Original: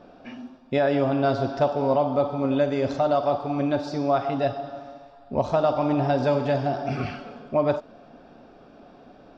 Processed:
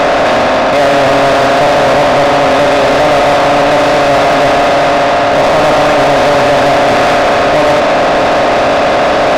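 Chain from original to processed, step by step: spectral levelling over time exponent 0.2; overdrive pedal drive 29 dB, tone 4.7 kHz, clips at -2 dBFS

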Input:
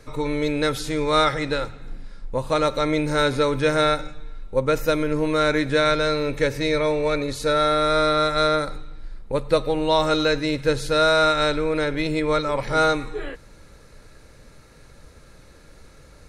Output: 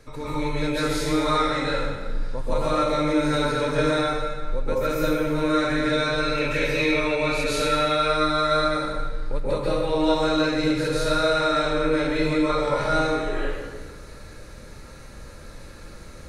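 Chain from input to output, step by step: 6.20–7.95 s: peaking EQ 2.7 kHz +14 dB 0.5 oct; compression 3:1, threshold -28 dBFS, peak gain reduction 11.5 dB; plate-style reverb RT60 1.4 s, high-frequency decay 0.75×, pre-delay 120 ms, DRR -9.5 dB; trim -3.5 dB

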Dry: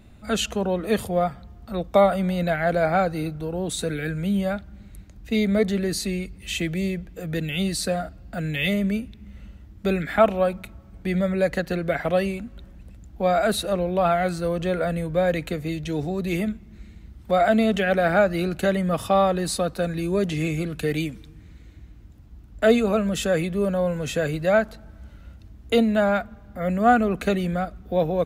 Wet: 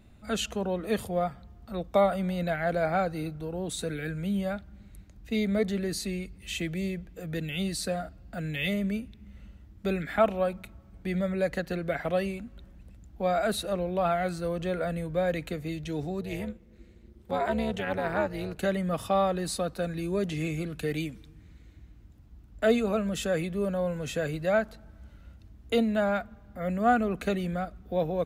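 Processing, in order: 16.21–18.58 s: AM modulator 290 Hz, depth 70%; trim -6 dB

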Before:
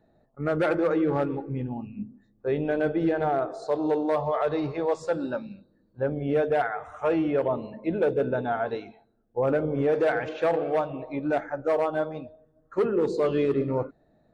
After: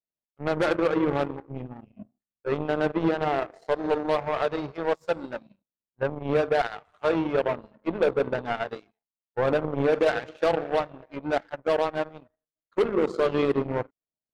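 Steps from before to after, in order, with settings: power-law waveshaper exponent 2; trim +4 dB

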